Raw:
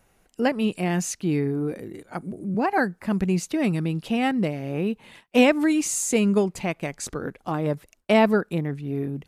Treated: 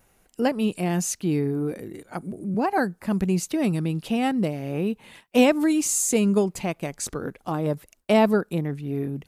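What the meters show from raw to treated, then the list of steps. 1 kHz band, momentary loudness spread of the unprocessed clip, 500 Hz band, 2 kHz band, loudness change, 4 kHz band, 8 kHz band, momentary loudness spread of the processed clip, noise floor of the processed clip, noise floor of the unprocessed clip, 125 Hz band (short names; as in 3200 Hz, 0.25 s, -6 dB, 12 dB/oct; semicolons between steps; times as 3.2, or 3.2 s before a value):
-0.5 dB, 13 LU, 0.0 dB, -3.5 dB, 0.0 dB, -1.0 dB, +2.5 dB, 12 LU, -63 dBFS, -64 dBFS, 0.0 dB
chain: dynamic EQ 2000 Hz, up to -5 dB, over -41 dBFS, Q 1.4; vibrato 0.94 Hz 11 cents; high shelf 9700 Hz +8 dB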